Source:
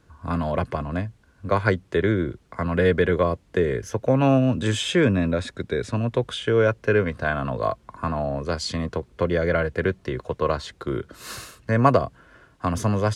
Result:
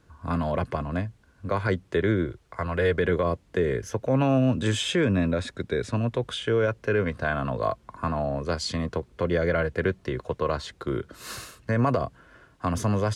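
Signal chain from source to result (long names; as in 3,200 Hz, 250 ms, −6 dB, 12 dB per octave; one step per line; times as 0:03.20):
0:02.26–0:02.98: parametric band 220 Hz −13.5 dB 0.66 octaves
brickwall limiter −12.5 dBFS, peak gain reduction 8.5 dB
level −1.5 dB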